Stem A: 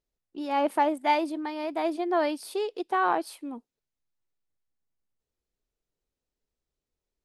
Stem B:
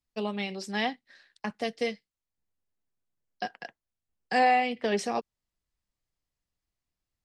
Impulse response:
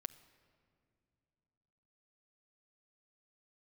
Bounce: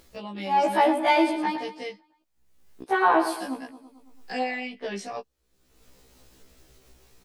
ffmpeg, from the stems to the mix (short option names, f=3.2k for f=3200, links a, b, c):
-filter_complex "[0:a]dynaudnorm=f=220:g=7:m=6dB,volume=2dB,asplit=3[a][b][c];[a]atrim=end=1.56,asetpts=PTS-STARTPTS,afade=t=out:st=1.556:d=0.004:c=hsin[d];[b]atrim=start=1.56:end=2.82,asetpts=PTS-STARTPTS,volume=0[e];[c]atrim=start=2.82,asetpts=PTS-STARTPTS,afade=t=in:d=0.004:c=hsin[f];[d][e][f]concat=n=3:v=0:a=1,asplit=2[g][h];[h]volume=-9dB[i];[1:a]volume=-2dB[j];[i]aecho=0:1:111|222|333|444|555|666:1|0.4|0.16|0.064|0.0256|0.0102[k];[g][j][k]amix=inputs=3:normalize=0,acompressor=mode=upward:threshold=-31dB:ratio=2.5,afftfilt=real='re*1.73*eq(mod(b,3),0)':imag='im*1.73*eq(mod(b,3),0)':win_size=2048:overlap=0.75"